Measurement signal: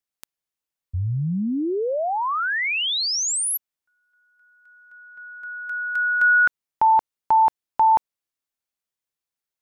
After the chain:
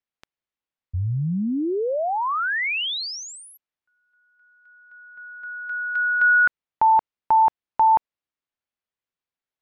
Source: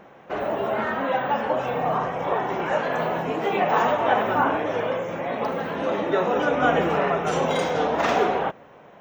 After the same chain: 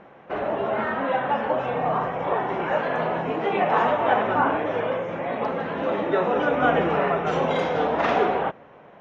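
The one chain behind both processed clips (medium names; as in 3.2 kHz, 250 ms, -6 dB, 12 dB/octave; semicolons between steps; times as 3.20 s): low-pass 3.4 kHz 12 dB/octave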